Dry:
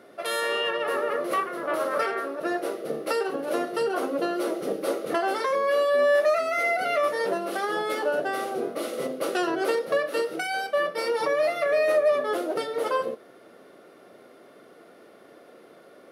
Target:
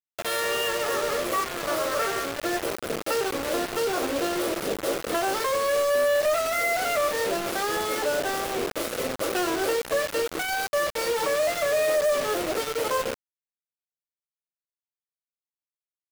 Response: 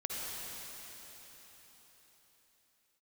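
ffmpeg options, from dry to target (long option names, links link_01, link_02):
-af "acrusher=bits=4:mix=0:aa=0.000001,asoftclip=type=hard:threshold=-19dB"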